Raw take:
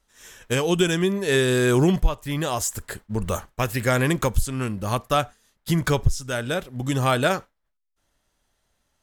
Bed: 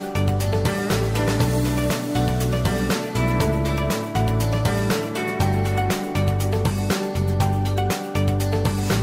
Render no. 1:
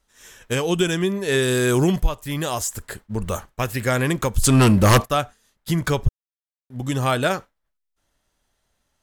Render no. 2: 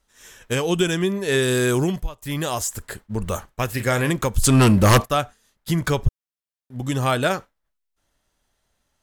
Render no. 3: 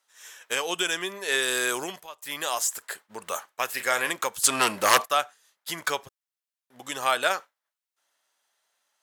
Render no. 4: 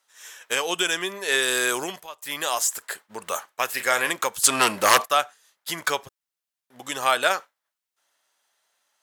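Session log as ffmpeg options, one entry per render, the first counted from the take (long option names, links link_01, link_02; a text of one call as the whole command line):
ffmpeg -i in.wav -filter_complex "[0:a]asettb=1/sr,asplit=3[link_01][link_02][link_03];[link_01]atrim=end=1.424[link_04];[link_02]atrim=start=1.42:end=2.6,asetpts=PTS-STARTPTS,afade=type=in:duration=0.004:curve=qsin,afade=type=out:start_time=1.176:duration=0.004:curve=qsin,highshelf=frequency=5900:gain=6[link_05];[link_03]atrim=start=2.596[link_06];[link_04][link_05]acrossfade=duration=0.004:curve1=hsin:curve2=qsin[link_07];[link_07][link_06]acrossfade=duration=0.004:curve1=qsin:curve2=hsin,asplit=3[link_08][link_09][link_10];[link_08]afade=type=out:start_time=4.43:duration=0.02[link_11];[link_09]aeval=exprs='0.376*sin(PI/2*3.98*val(0)/0.376)':channel_layout=same,afade=type=in:start_time=4.43:duration=0.02,afade=type=out:start_time=5.04:duration=0.02[link_12];[link_10]afade=type=in:start_time=5.04:duration=0.02[link_13];[link_11][link_12][link_13]amix=inputs=3:normalize=0,asplit=3[link_14][link_15][link_16];[link_14]atrim=end=6.09,asetpts=PTS-STARTPTS,afade=type=out:start_time=6.086:duration=0.004:curve=hsin[link_17];[link_15]atrim=start=6.09:end=6.7,asetpts=PTS-STARTPTS,volume=0[link_18];[link_16]atrim=start=6.7,asetpts=PTS-STARTPTS,afade=type=in:duration=0.004:curve=hsin[link_19];[link_17][link_18][link_19]concat=n=3:v=0:a=1" out.wav
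ffmpeg -i in.wav -filter_complex "[0:a]asettb=1/sr,asplit=3[link_01][link_02][link_03];[link_01]atrim=end=3.684[link_04];[link_02]atrim=start=3.68:end=4.11,asetpts=PTS-STARTPTS,afade=type=in:duration=0.004:curve=qsin,afade=type=out:start_time=0.426:duration=0.004:curve=qsin,asplit=2[link_05][link_06];[link_06]adelay=34,volume=-9.5dB[link_07];[link_05][link_07]amix=inputs=2:normalize=0,atrim=end_sample=18963[link_08];[link_03]atrim=start=4.106[link_09];[link_04][link_08]acrossfade=duration=0.004:curve1=hsin:curve2=qsin[link_10];[link_10][link_09]acrossfade=duration=0.004:curve1=qsin:curve2=hsin,asplit=2[link_11][link_12];[link_11]atrim=end=2.22,asetpts=PTS-STARTPTS,afade=type=out:start_time=1.63:duration=0.59:silence=0.16788[link_13];[link_12]atrim=start=2.22,asetpts=PTS-STARTPTS,afade=type=in:duration=0.004:curve=hsin:silence=0.16788[link_14];[link_13][link_14]concat=n=2:v=0:a=1" out.wav
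ffmpeg -i in.wav -af "highpass=750" out.wav
ffmpeg -i in.wav -af "volume=3dB,alimiter=limit=-2dB:level=0:latency=1" out.wav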